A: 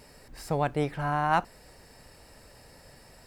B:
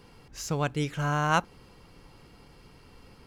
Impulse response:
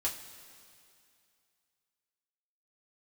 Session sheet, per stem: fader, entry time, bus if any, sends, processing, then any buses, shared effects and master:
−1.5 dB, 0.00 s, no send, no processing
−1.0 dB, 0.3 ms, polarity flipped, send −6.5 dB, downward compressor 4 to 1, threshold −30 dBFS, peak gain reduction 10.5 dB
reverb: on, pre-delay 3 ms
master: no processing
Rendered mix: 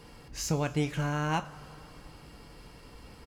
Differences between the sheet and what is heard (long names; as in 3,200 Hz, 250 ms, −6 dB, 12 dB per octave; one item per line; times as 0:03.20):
stem A −1.5 dB → −8.5 dB
stem B: polarity flipped